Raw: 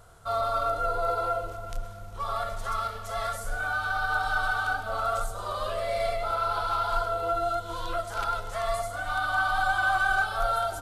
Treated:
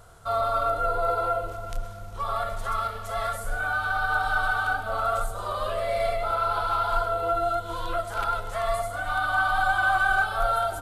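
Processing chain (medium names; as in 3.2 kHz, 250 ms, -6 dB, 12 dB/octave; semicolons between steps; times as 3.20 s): dynamic bell 5.7 kHz, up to -7 dB, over -53 dBFS, Q 1.4; trim +2.5 dB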